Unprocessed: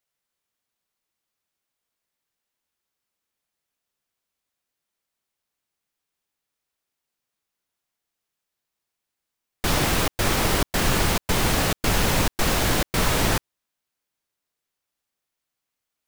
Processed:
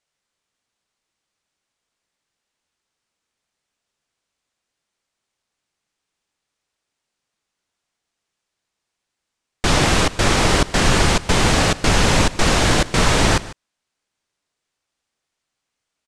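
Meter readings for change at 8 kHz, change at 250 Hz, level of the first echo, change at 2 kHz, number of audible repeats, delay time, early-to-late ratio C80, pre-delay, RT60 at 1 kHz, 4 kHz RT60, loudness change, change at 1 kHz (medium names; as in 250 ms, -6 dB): +4.5 dB, +6.0 dB, -18.0 dB, +6.0 dB, 1, 148 ms, no reverb, no reverb, no reverb, no reverb, +5.5 dB, +6.0 dB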